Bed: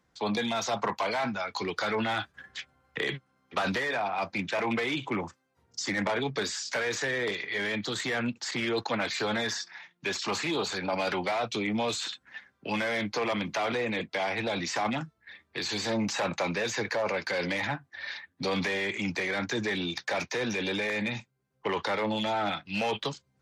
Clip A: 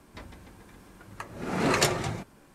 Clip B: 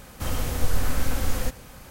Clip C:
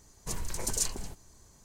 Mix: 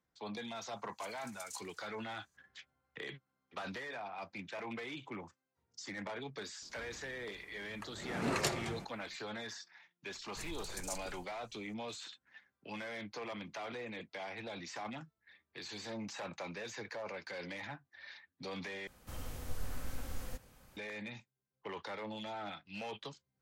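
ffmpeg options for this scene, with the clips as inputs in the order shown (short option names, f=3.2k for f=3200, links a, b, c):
-filter_complex "[3:a]asplit=2[a][b];[0:a]volume=-14dB[c];[a]highpass=1.5k[d];[b]asoftclip=type=tanh:threshold=-16dB[e];[c]asplit=2[f][g];[f]atrim=end=18.874[h];[2:a]atrim=end=1.9,asetpts=PTS-STARTPTS,volume=-17dB[i];[g]atrim=start=20.766[j];[d]atrim=end=1.64,asetpts=PTS-STARTPTS,volume=-17.5dB,afade=t=in:d=0.004:c=hsin,afade=t=out:st=1.636:d=0.004:c=hsin,adelay=730[k];[1:a]atrim=end=2.54,asetpts=PTS-STARTPTS,volume=-10dB,afade=t=in:d=0.004:c=hsin,afade=t=out:st=2.536:d=0.004:c=hsin,adelay=6620[l];[e]atrim=end=1.64,asetpts=PTS-STARTPTS,volume=-12.5dB,afade=t=in:d=0.004:c=hsin,afade=t=out:st=1.636:d=0.004:c=hsin,adelay=445410S[m];[h][i]acrossfade=d=0.004:c1=hsin:c2=hsin[n];[n][j]acrossfade=d=0.004:c1=hsin:c2=hsin[o];[o][k][l][m]amix=inputs=4:normalize=0"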